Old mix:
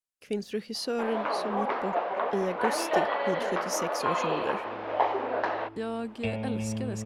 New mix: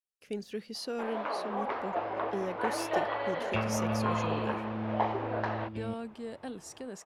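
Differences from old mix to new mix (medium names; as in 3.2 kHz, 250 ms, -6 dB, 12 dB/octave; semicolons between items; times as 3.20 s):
speech -5.5 dB; first sound -4.5 dB; second sound: entry -2.70 s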